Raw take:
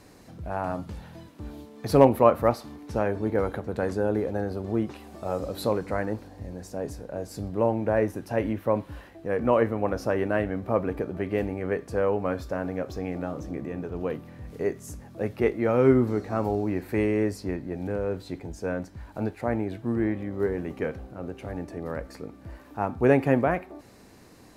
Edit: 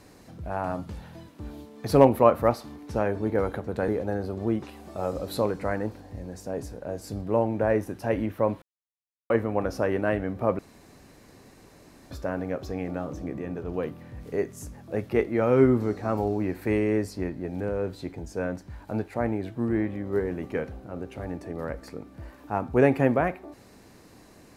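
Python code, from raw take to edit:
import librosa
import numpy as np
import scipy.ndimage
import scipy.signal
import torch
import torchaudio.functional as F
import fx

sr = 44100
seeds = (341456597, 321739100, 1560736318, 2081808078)

y = fx.edit(x, sr, fx.cut(start_s=3.88, length_s=0.27),
    fx.silence(start_s=8.89, length_s=0.68),
    fx.room_tone_fill(start_s=10.86, length_s=1.52), tone=tone)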